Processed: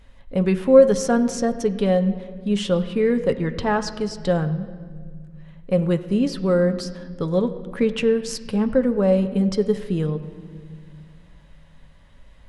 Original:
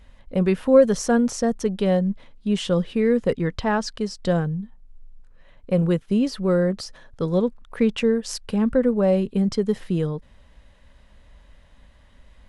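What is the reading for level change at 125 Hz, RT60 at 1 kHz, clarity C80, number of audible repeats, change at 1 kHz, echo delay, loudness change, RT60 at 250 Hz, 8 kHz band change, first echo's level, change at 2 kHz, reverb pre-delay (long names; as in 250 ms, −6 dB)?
+0.5 dB, 1.6 s, 13.5 dB, no echo audible, +1.5 dB, no echo audible, +1.0 dB, 2.8 s, 0.0 dB, no echo audible, +0.5 dB, 7 ms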